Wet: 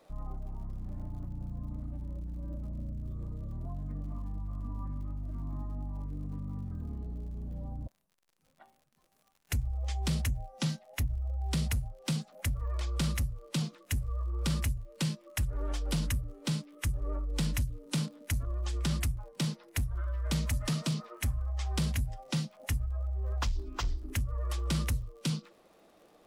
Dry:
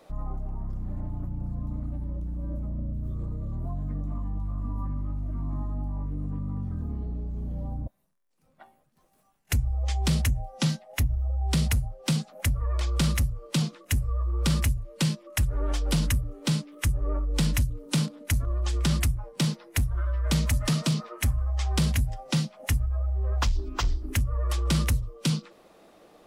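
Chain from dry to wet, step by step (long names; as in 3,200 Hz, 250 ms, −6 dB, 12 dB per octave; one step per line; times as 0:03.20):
surface crackle 70 per second −46 dBFS
level −6.5 dB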